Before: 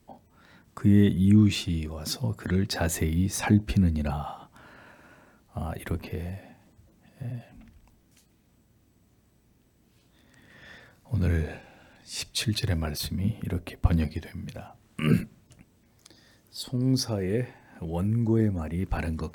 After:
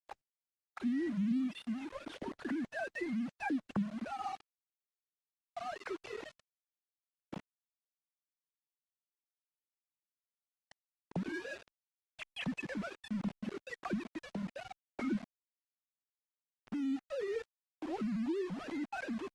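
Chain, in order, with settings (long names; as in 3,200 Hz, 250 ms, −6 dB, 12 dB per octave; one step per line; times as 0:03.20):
three sine waves on the formant tracks
high-shelf EQ 2,900 Hz −3.5 dB
notch filter 440 Hz, Q 13
downward compressor 3 to 1, threshold −39 dBFS, peak gain reduction 19.5 dB
sound drawn into the spectrogram rise, 0:11.52–0:11.76, 320–920 Hz −54 dBFS
low-pass that shuts in the quiet parts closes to 400 Hz, open at −37 dBFS
centre clipping without the shift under −44 dBFS
high-frequency loss of the air 69 metres
level +1 dB
Opus 24 kbit/s 48,000 Hz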